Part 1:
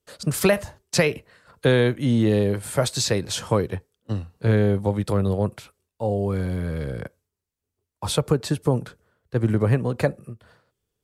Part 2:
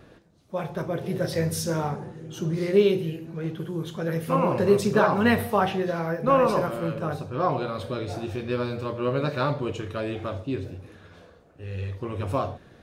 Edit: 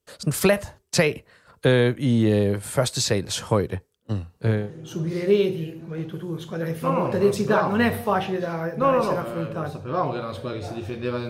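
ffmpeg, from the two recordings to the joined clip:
-filter_complex "[0:a]apad=whole_dur=11.29,atrim=end=11.29,atrim=end=4.72,asetpts=PTS-STARTPTS[a];[1:a]atrim=start=1.9:end=8.75,asetpts=PTS-STARTPTS[b];[a][b]acrossfade=d=0.28:c1=tri:c2=tri"

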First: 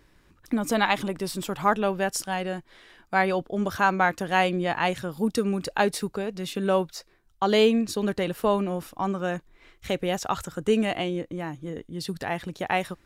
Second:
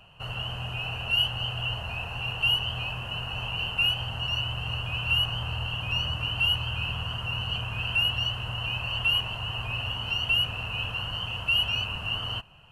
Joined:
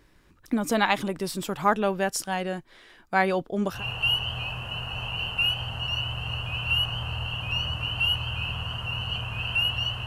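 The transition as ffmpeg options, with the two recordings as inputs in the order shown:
-filter_complex "[0:a]apad=whole_dur=10.06,atrim=end=10.06,atrim=end=3.84,asetpts=PTS-STARTPTS[a];[1:a]atrim=start=2.08:end=8.46,asetpts=PTS-STARTPTS[b];[a][b]acrossfade=d=0.16:c1=tri:c2=tri"

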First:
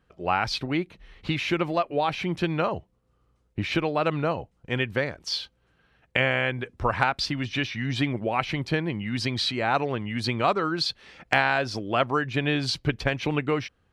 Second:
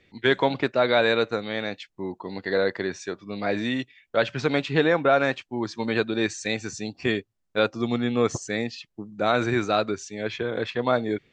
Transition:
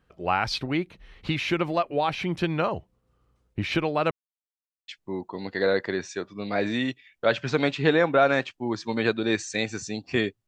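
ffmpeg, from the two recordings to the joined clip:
-filter_complex "[0:a]apad=whole_dur=10.47,atrim=end=10.47,asplit=2[a][b];[a]atrim=end=4.11,asetpts=PTS-STARTPTS,afade=t=out:st=4.106:d=0.004:c=hsin[c];[b]atrim=start=4.11:end=4.88,asetpts=PTS-STARTPTS,volume=0[d];[1:a]atrim=start=1.79:end=7.38,asetpts=PTS-STARTPTS,afade=t=in:d=0.004:c=hsin[e];[c][d][e]concat=n=3:v=0:a=1"

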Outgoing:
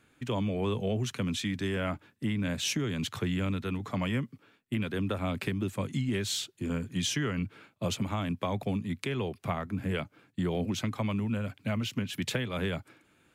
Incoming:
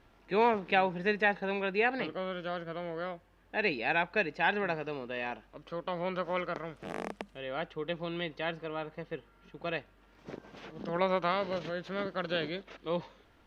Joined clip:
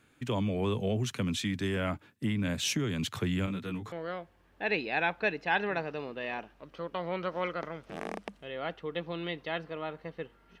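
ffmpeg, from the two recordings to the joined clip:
-filter_complex "[0:a]asettb=1/sr,asplit=3[a][b][c];[a]atrim=end=3.464[d];[b]atrim=start=3.46:end=3.92,asetpts=PTS-STARTPTS,afade=t=in:d=0.004:c=qsin,afade=t=out:st=0.456:d=0.004:c=qsin,flanger=delay=16:depth=2.3:speed=0.92[e];[c]atrim=start=3.916[f];[d][e]acrossfade=d=0.004:c1=hsin:c2=qsin[g];[g][f]acrossfade=d=0.004:c1=qsin:c2=hsin,apad=whole_dur=10.6,atrim=end=10.6,atrim=end=3.922[h];[1:a]atrim=start=2.848:end=9.53[i];[h][i]acrossfade=d=0.004:c1=hsin:c2=hsin"

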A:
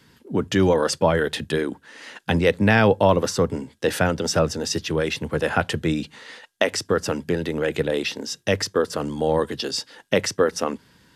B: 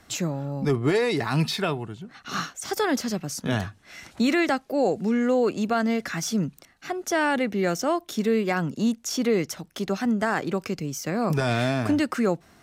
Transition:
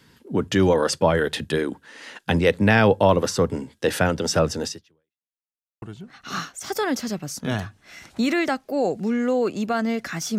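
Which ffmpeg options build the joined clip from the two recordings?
-filter_complex "[0:a]apad=whole_dur=10.38,atrim=end=10.38,asplit=2[a][b];[a]atrim=end=5.34,asetpts=PTS-STARTPTS,afade=t=out:st=4.66:d=0.68:c=exp[c];[b]atrim=start=5.34:end=5.82,asetpts=PTS-STARTPTS,volume=0[d];[1:a]atrim=start=1.83:end=6.39,asetpts=PTS-STARTPTS,afade=t=in:d=0.004:c=hsin[e];[c][d][e]concat=n=3:v=0:a=1"

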